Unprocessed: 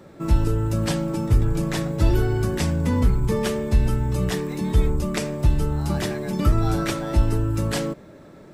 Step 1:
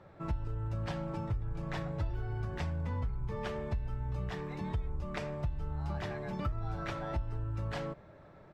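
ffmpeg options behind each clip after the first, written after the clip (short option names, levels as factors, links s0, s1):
-af "firequalizer=gain_entry='entry(100,0);entry(240,-12);entry(720,0);entry(9400,-24)':delay=0.05:min_phase=1,acompressor=threshold=0.0447:ratio=6,volume=0.562"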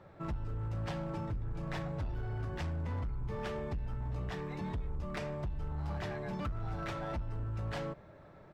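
-af "asoftclip=type=hard:threshold=0.0237"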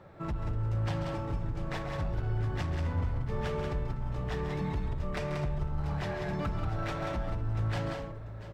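-af "aecho=1:1:137|184|246|691|838:0.316|0.562|0.168|0.158|0.251,volume=1.41"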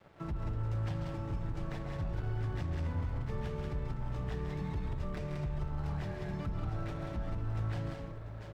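-filter_complex "[0:a]acrossover=split=130|410|880[s0][s1][s2][s3];[s0]acompressor=threshold=0.0224:ratio=4[s4];[s1]acompressor=threshold=0.01:ratio=4[s5];[s2]acompressor=threshold=0.00251:ratio=4[s6];[s3]acompressor=threshold=0.00316:ratio=4[s7];[s4][s5][s6][s7]amix=inputs=4:normalize=0,aeval=exprs='sgn(val(0))*max(abs(val(0))-0.00188,0)':c=same"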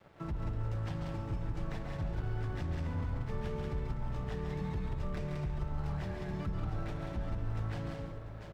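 -af "aecho=1:1:141:0.299"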